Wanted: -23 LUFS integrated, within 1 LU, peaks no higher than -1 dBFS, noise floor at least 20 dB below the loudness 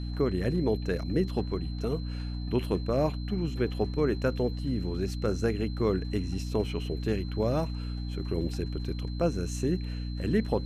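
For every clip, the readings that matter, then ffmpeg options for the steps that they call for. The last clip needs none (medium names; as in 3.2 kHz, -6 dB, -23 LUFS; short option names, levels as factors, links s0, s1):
hum 60 Hz; highest harmonic 300 Hz; hum level -32 dBFS; steady tone 4.1 kHz; tone level -49 dBFS; loudness -30.5 LUFS; peak level -14.0 dBFS; loudness target -23.0 LUFS
-> -af "bandreject=f=60:t=h:w=4,bandreject=f=120:t=h:w=4,bandreject=f=180:t=h:w=4,bandreject=f=240:t=h:w=4,bandreject=f=300:t=h:w=4"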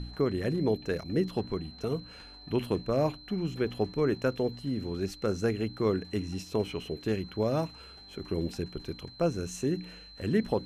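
hum not found; steady tone 4.1 kHz; tone level -49 dBFS
-> -af "bandreject=f=4100:w=30"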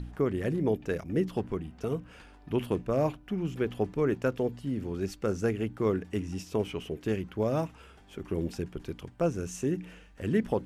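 steady tone not found; loudness -31.5 LUFS; peak level -15.0 dBFS; loudness target -23.0 LUFS
-> -af "volume=2.66"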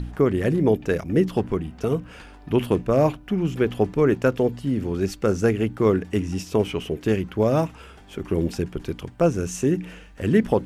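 loudness -23.5 LUFS; peak level -6.5 dBFS; noise floor -46 dBFS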